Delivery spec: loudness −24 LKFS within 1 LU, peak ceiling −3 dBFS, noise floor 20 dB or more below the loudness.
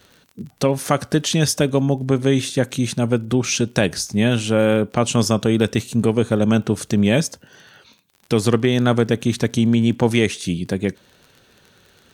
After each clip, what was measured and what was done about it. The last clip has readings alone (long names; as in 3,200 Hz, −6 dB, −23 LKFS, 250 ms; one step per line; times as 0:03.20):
crackle rate 32 per second; integrated loudness −19.0 LKFS; sample peak −2.0 dBFS; target loudness −24.0 LKFS
→ click removal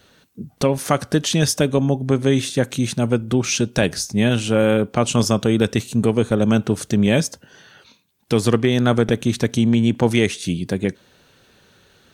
crackle rate 0.16 per second; integrated loudness −19.0 LKFS; sample peak −2.5 dBFS; target loudness −24.0 LKFS
→ level −5 dB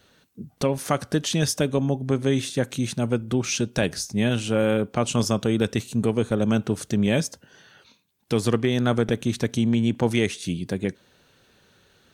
integrated loudness −24.0 LKFS; sample peak −7.5 dBFS; background noise floor −61 dBFS